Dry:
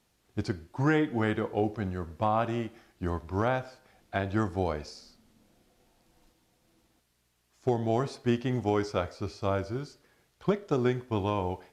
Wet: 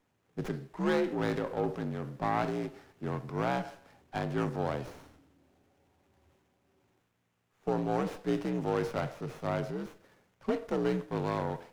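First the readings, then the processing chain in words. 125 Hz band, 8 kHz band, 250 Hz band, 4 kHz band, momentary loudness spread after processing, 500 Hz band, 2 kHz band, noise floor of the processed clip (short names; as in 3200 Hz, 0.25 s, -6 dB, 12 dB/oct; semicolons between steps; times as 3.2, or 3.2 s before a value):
-4.5 dB, -3.0 dB, -3.0 dB, -3.5 dB, 10 LU, -2.5 dB, -3.5 dB, -76 dBFS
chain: frequency shift +56 Hz; transient shaper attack -2 dB, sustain +6 dB; running maximum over 9 samples; gain -3 dB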